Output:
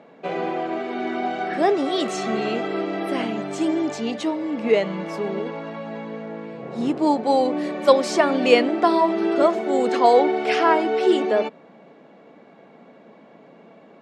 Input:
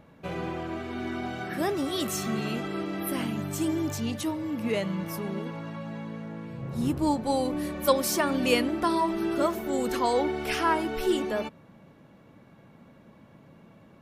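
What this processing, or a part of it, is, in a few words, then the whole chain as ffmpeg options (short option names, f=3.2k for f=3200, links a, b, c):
television speaker: -af "highpass=f=200:w=0.5412,highpass=f=200:w=1.3066,equalizer=f=440:t=q:w=4:g=8,equalizer=f=710:t=q:w=4:g=9,equalizer=f=2.1k:t=q:w=4:g=3,equalizer=f=5.8k:t=q:w=4:g=-5,lowpass=f=6.7k:w=0.5412,lowpass=f=6.7k:w=1.3066,volume=4.5dB"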